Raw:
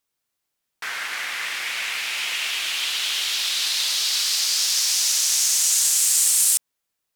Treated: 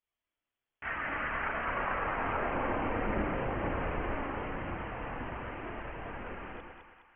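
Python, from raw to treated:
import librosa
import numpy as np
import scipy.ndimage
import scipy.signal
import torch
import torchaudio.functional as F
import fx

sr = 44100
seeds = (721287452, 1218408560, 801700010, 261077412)

y = fx.freq_invert(x, sr, carrier_hz=3400)
y = fx.chorus_voices(y, sr, voices=4, hz=0.33, base_ms=30, depth_ms=2.3, mix_pct=60)
y = fx.echo_split(y, sr, split_hz=800.0, low_ms=112, high_ms=207, feedback_pct=52, wet_db=-5)
y = y * 10.0 ** (-3.5 / 20.0)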